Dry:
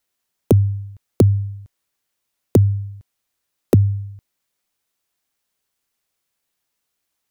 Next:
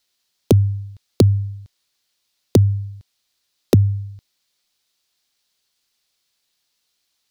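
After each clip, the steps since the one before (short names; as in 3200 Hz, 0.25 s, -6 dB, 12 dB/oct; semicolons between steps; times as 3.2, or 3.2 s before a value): bell 4300 Hz +12.5 dB 1.3 oct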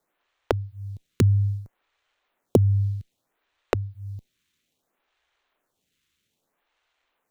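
median filter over 9 samples; compressor 10:1, threshold -21 dBFS, peak gain reduction 12.5 dB; photocell phaser 0.62 Hz; gain +7 dB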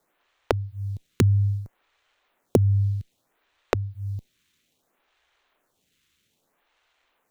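compressor 1.5:1, threshold -31 dBFS, peak gain reduction 6.5 dB; gain +5 dB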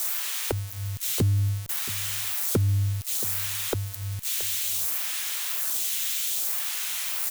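switching spikes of -18 dBFS; echo 0.676 s -19.5 dB; soft clip -14 dBFS, distortion -17 dB; gain -1.5 dB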